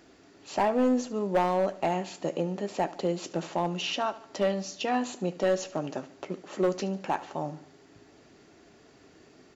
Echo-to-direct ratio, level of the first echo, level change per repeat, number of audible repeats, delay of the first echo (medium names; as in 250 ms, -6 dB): -16.5 dB, -17.5 dB, -6.5 dB, 3, 73 ms